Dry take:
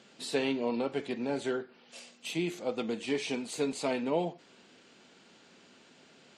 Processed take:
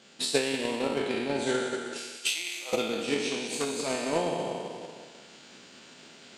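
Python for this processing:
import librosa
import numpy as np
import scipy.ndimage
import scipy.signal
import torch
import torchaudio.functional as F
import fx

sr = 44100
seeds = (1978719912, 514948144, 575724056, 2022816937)

y = fx.spec_trails(x, sr, decay_s=1.79)
y = fx.high_shelf(y, sr, hz=2400.0, db=6.0)
y = fx.rider(y, sr, range_db=4, speed_s=0.5)
y = fx.overload_stage(y, sr, gain_db=20.0, at=(0.57, 1.14))
y = fx.highpass(y, sr, hz=1100.0, slope=12, at=(1.98, 2.73))
y = fx.echo_feedback(y, sr, ms=187, feedback_pct=29, wet_db=-8)
y = fx.transient(y, sr, attack_db=10, sustain_db=-4)
y = fx.transformer_sat(y, sr, knee_hz=1500.0, at=(3.31, 3.9))
y = F.gain(torch.from_numpy(y), -2.5).numpy()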